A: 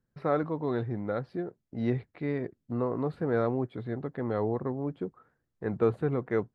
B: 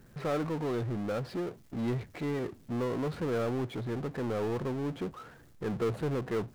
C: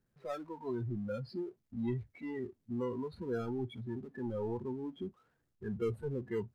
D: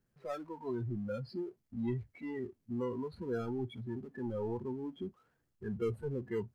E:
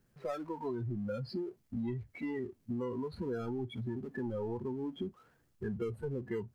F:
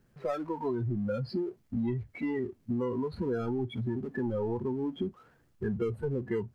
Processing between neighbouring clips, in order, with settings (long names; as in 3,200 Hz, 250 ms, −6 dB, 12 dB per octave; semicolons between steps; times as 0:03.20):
power curve on the samples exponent 0.5; level −9 dB
noise reduction from a noise print of the clip's start 20 dB; level −3 dB
notch filter 3,700 Hz, Q 19
downward compressor, threshold −42 dBFS, peak gain reduction 11.5 dB; level +7.5 dB
high-shelf EQ 4,300 Hz −6.5 dB; level +5.5 dB